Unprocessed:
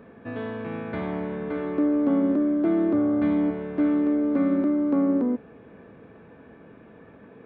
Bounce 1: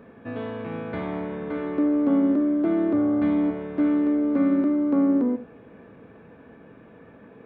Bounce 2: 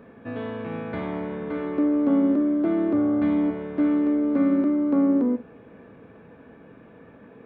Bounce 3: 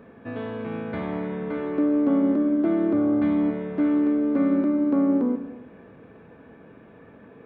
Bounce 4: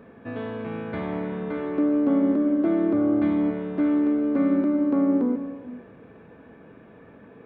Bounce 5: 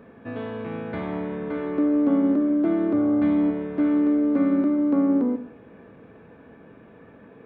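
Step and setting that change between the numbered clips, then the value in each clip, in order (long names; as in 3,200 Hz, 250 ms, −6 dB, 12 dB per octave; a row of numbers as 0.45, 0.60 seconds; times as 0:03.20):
reverb whose tail is shaped and stops, gate: 120, 80, 330, 490, 200 milliseconds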